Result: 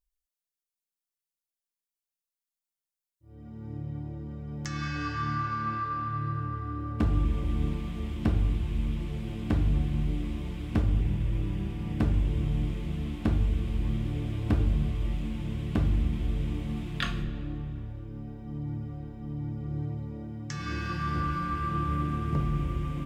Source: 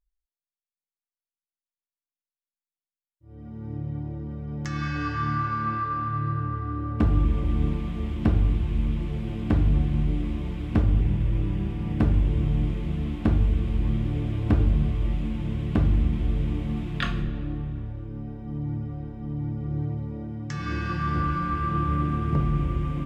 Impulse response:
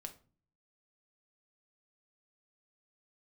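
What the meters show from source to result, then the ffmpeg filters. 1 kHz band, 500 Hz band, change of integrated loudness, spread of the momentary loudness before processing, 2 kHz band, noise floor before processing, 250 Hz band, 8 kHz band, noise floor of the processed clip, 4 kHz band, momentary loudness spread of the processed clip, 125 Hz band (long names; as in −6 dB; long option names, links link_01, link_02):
−3.5 dB, −4.5 dB, −4.5 dB, 11 LU, −3.0 dB, below −85 dBFS, −4.5 dB, can't be measured, below −85 dBFS, −0.5 dB, 11 LU, −4.5 dB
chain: -af "highshelf=frequency=3900:gain=9.5,volume=-4.5dB"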